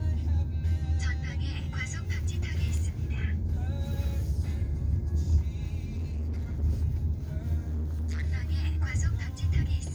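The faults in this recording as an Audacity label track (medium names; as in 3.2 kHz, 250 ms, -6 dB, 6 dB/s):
5.890000	6.640000	clipped -29 dBFS
7.670000	8.240000	clipped -28.5 dBFS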